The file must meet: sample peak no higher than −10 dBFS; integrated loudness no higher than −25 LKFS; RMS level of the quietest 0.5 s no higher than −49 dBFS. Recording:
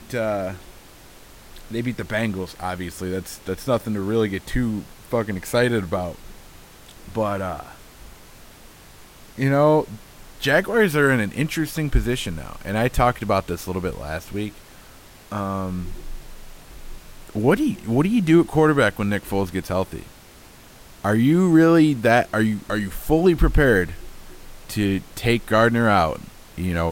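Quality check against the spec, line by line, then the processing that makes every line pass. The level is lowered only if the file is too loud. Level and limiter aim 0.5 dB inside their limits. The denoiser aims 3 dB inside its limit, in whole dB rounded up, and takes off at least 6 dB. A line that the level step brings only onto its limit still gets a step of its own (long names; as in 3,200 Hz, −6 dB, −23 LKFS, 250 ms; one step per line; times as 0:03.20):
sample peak −5.5 dBFS: out of spec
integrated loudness −21.5 LKFS: out of spec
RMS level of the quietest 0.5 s −46 dBFS: out of spec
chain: level −4 dB
brickwall limiter −10.5 dBFS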